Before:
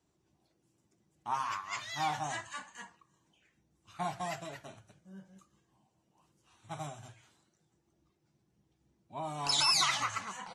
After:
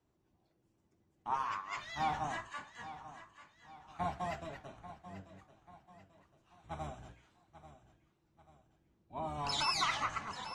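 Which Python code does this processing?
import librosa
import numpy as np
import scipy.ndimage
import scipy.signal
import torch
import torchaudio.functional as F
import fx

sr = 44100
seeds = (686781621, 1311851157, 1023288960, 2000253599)

y = fx.octave_divider(x, sr, octaves=1, level_db=1.0)
y = fx.lowpass(y, sr, hz=2000.0, slope=6)
y = fx.low_shelf(y, sr, hz=200.0, db=-6.5)
y = fx.echo_feedback(y, sr, ms=839, feedback_pct=43, wet_db=-14.0)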